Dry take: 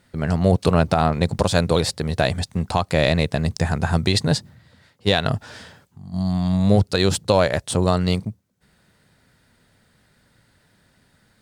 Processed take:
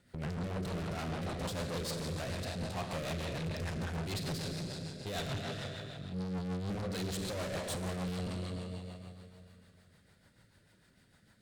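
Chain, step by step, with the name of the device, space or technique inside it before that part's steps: Schroeder reverb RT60 2.6 s, combs from 33 ms, DRR 4.5 dB; overdriven rotary cabinet (tube stage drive 31 dB, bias 0.55; rotary speaker horn 6.7 Hz); gain -3 dB

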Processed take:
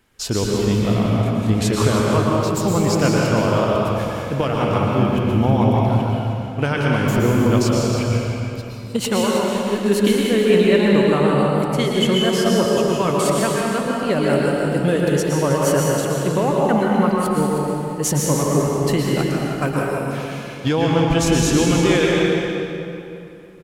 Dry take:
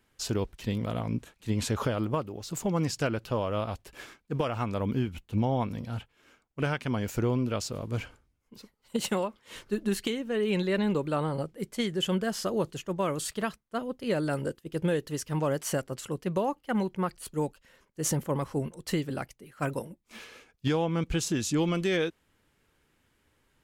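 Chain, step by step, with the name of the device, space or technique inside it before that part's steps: cave (echo 0.315 s -11 dB; reverb RT60 2.8 s, pre-delay 0.108 s, DRR -3.5 dB); gain +7.5 dB

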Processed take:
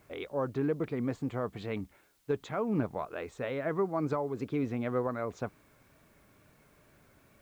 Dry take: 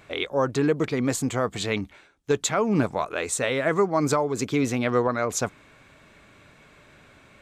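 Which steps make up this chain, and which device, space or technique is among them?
cassette deck with a dirty head (tape spacing loss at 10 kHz 34 dB; wow and flutter; white noise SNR 37 dB); gain -7 dB

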